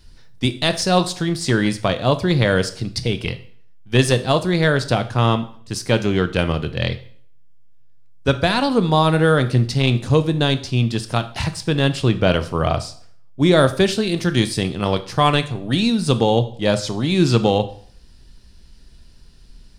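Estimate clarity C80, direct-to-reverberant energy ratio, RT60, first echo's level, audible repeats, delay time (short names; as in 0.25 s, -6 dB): 19.0 dB, 10.0 dB, 0.55 s, none, none, none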